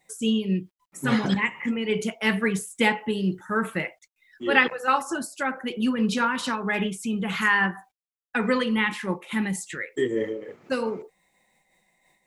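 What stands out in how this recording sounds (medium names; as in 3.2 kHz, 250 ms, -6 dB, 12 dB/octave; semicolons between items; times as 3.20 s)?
a quantiser's noise floor 12-bit, dither none; random flutter of the level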